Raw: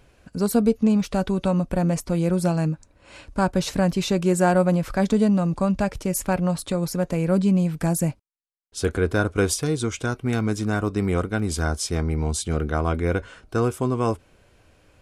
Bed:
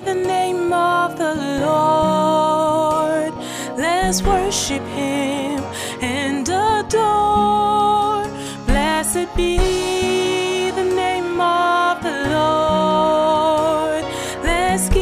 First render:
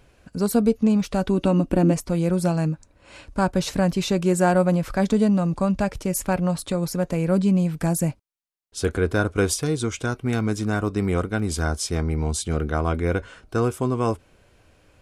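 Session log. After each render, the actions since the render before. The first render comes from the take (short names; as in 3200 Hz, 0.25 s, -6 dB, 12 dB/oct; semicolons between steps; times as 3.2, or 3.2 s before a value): 1.28–1.92 small resonant body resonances 300/2800 Hz, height 12 dB -> 16 dB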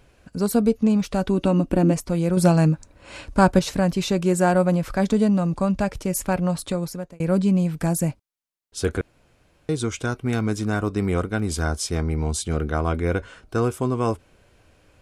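2.37–3.59 gain +5.5 dB; 6.71–7.2 fade out; 9.01–9.69 room tone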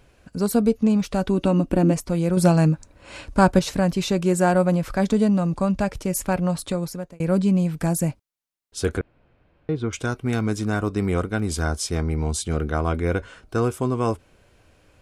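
8.99–9.93 air absorption 370 m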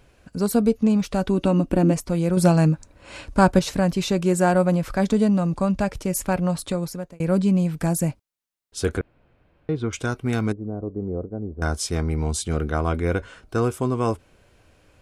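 10.52–11.62 ladder low-pass 700 Hz, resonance 30%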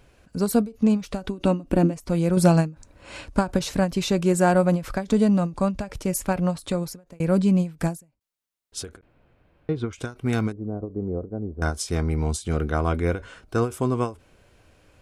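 ending taper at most 200 dB/s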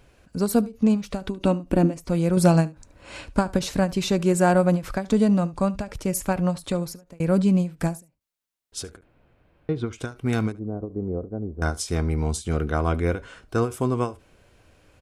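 echo 73 ms -21.5 dB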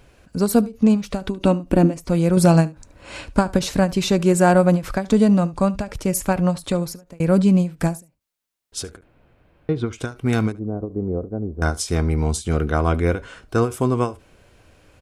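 gain +4 dB; limiter -2 dBFS, peak gain reduction 2.5 dB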